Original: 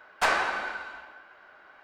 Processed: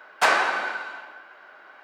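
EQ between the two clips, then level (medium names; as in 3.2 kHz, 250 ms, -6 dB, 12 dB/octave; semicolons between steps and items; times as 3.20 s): high-pass 230 Hz 12 dB/octave; +5.0 dB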